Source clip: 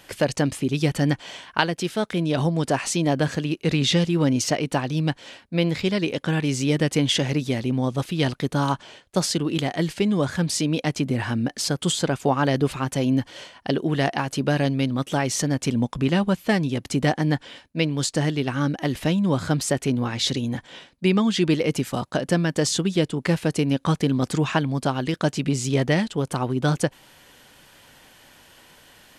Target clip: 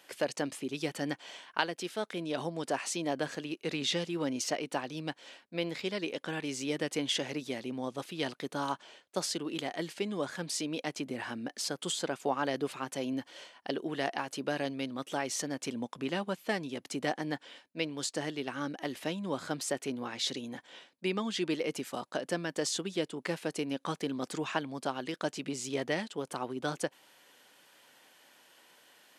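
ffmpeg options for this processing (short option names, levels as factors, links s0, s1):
-af "highpass=300,volume=0.355"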